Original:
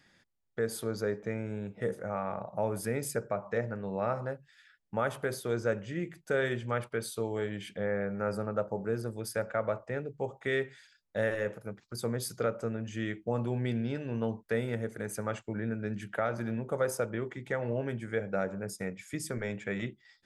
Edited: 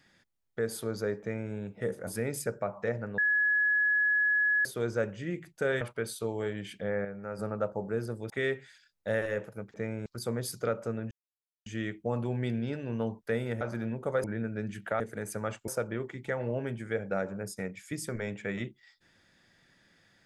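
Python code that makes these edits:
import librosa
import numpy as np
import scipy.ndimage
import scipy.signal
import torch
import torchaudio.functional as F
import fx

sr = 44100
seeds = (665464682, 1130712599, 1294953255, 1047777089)

y = fx.edit(x, sr, fx.duplicate(start_s=1.21, length_s=0.32, to_s=11.83),
    fx.cut(start_s=2.07, length_s=0.69),
    fx.bleep(start_s=3.87, length_s=1.47, hz=1690.0, db=-23.0),
    fx.cut(start_s=6.5, length_s=0.27),
    fx.clip_gain(start_s=8.01, length_s=0.34, db=-6.5),
    fx.cut(start_s=9.26, length_s=1.13),
    fx.insert_silence(at_s=12.88, length_s=0.55),
    fx.swap(start_s=14.83, length_s=0.68, other_s=16.27, other_length_s=0.63), tone=tone)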